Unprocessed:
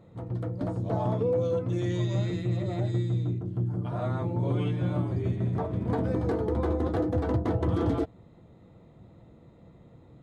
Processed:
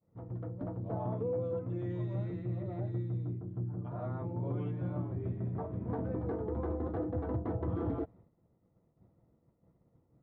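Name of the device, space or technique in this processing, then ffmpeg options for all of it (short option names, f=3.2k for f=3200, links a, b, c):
hearing-loss simulation: -af "lowpass=1.5k,agate=range=-33dB:threshold=-45dB:ratio=3:detection=peak,volume=-8dB"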